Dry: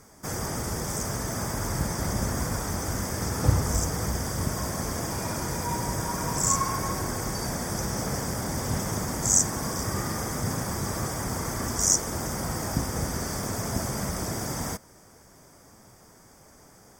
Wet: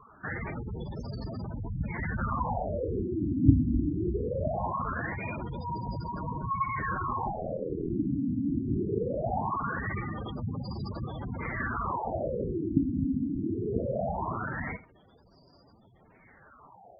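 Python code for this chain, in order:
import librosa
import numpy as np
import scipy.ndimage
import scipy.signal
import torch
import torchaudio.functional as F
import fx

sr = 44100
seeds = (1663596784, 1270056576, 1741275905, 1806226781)

p1 = fx.cheby_harmonics(x, sr, harmonics=(2, 3, 4), levels_db=(-30, -19, -25), full_scale_db=-7.5)
p2 = fx.filter_lfo_lowpass(p1, sr, shape='sine', hz=0.21, low_hz=270.0, high_hz=4200.0, q=6.2)
p3 = p2 + fx.echo_single(p2, sr, ms=79, db=-17.0, dry=0)
p4 = fx.ring_mod(p3, sr, carrier_hz=41.0, at=(7.32, 7.88), fade=0.02)
y = fx.spec_gate(p4, sr, threshold_db=-10, keep='strong')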